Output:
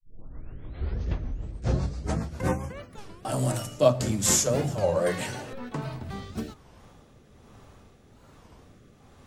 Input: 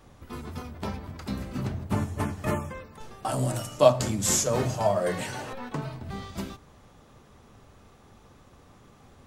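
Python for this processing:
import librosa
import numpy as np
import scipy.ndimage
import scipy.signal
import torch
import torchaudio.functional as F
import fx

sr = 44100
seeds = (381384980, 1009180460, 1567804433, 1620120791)

y = fx.tape_start_head(x, sr, length_s=2.88)
y = fx.rotary_switch(y, sr, hz=7.5, then_hz=1.2, switch_at_s=2.45)
y = fx.record_warp(y, sr, rpm=33.33, depth_cents=250.0)
y = y * 10.0 ** (2.5 / 20.0)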